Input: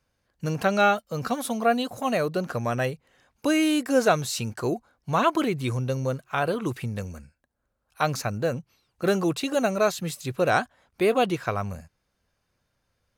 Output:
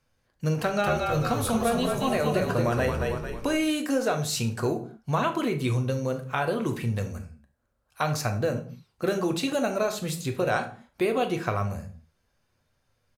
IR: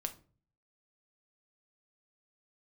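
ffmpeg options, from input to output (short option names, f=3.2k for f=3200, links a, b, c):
-filter_complex "[0:a]acompressor=threshold=-23dB:ratio=6,asplit=3[a][b][c];[a]afade=t=out:st=0.82:d=0.02[d];[b]asplit=8[e][f][g][h][i][j][k][l];[f]adelay=223,afreqshift=-42,volume=-3.5dB[m];[g]adelay=446,afreqshift=-84,volume=-9.2dB[n];[h]adelay=669,afreqshift=-126,volume=-14.9dB[o];[i]adelay=892,afreqshift=-168,volume=-20.5dB[p];[j]adelay=1115,afreqshift=-210,volume=-26.2dB[q];[k]adelay=1338,afreqshift=-252,volume=-31.9dB[r];[l]adelay=1561,afreqshift=-294,volume=-37.6dB[s];[e][m][n][o][p][q][r][s]amix=inputs=8:normalize=0,afade=t=in:st=0.82:d=0.02,afade=t=out:st=3.54:d=0.02[t];[c]afade=t=in:st=3.54:d=0.02[u];[d][t][u]amix=inputs=3:normalize=0[v];[1:a]atrim=start_sample=2205,afade=t=out:st=0.22:d=0.01,atrim=end_sample=10143,asetrate=30870,aresample=44100[w];[v][w]afir=irnorm=-1:irlink=0"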